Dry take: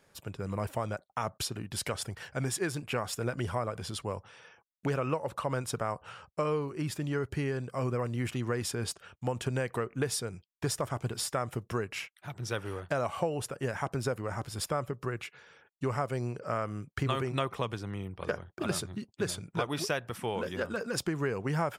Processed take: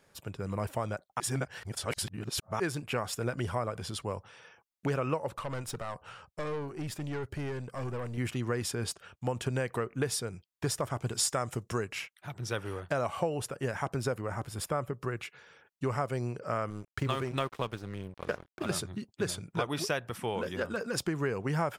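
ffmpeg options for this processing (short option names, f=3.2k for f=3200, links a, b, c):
-filter_complex "[0:a]asettb=1/sr,asplit=3[a][b][c];[a]atrim=end=5.314[d];[b]atrim=start=5.31:end=8.18,asetpts=PTS-STARTPTS,afade=t=in:d=0.004:c=qsin,afade=t=out:st=2.866:d=0.004:c=qsin,aeval=exprs='(tanh(35.5*val(0)+0.35)-tanh(0.35))/35.5':c=same[e];[c]atrim=start=8.176[f];[d][e]acrossfade=d=0.004:c1=hsin:c2=qsin[g];[g][f]acrossfade=d=0.004:c1=qsin:c2=hsin,asettb=1/sr,asplit=3[h][i][j];[h]atrim=end=11.074[k];[i]atrim=start=11.07:end=11.93,asetpts=PTS-STARTPTS,afade=t=in:d=0.004:c=qsin,afade=t=out:st=0.856:d=0.004:c=qsin,equalizer=f=7.1k:t=o:w=0.99:g=8.5[l];[j]atrim=start=11.926[m];[k][l]acrossfade=d=0.004:c1=hsin:c2=qsin[n];[n][m]acrossfade=d=0.004:c1=qsin:c2=hsin,asettb=1/sr,asplit=3[o][p][q];[o]atrim=end=14.214[r];[p]atrim=start=14.21:end=14.96,asetpts=PTS-STARTPTS,afade=t=in:d=0.004:c=qsin,afade=t=out:st=0.746:d=0.004:c=qsin,equalizer=f=4.8k:w=1.1:g=-5[s];[q]atrim=start=14.956[t];[r][s]acrossfade=d=0.004:c1=hsin:c2=qsin[u];[u][t]acrossfade=d=0.004:c1=qsin:c2=hsin,asettb=1/sr,asplit=3[v][w][x];[v]atrim=end=16.704[y];[w]atrim=start=16.7:end=18.72,asetpts=PTS-STARTPTS,afade=t=in:d=0.004:c=qsin,afade=t=out:st=2.016:d=0.004:c=qsin,aeval=exprs='sgn(val(0))*max(abs(val(0))-0.00531,0)':c=same[z];[x]atrim=start=18.716[aa];[y][z]acrossfade=d=0.004:c1=hsin:c2=qsin[ab];[ab][aa]acrossfade=d=0.004:c1=qsin:c2=hsin,asplit=3[ac][ad][ae];[ac]atrim=end=1.202[af];[ad]atrim=start=1.198:end=2.602,asetpts=PTS-STARTPTS,areverse[ag];[ae]atrim=start=2.598[ah];[af][ag]acrossfade=d=0.004:c1=hsin:c2=hsin[ai];[ai][ah]acrossfade=d=0.004:c1=hsin:c2=hsin"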